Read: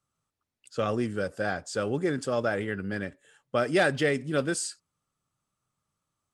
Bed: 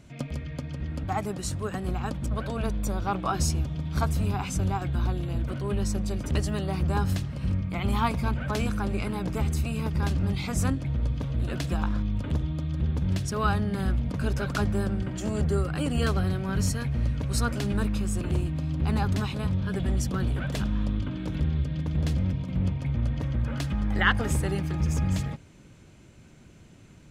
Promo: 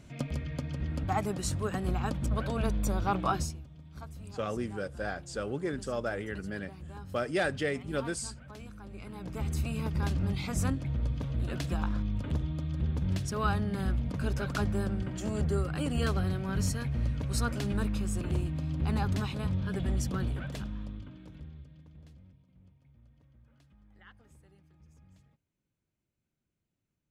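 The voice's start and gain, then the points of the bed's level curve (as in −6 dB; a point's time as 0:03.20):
3.60 s, −6.0 dB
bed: 0:03.32 −1 dB
0:03.61 −19 dB
0:08.81 −19 dB
0:09.59 −4 dB
0:20.17 −4 dB
0:22.56 −33.5 dB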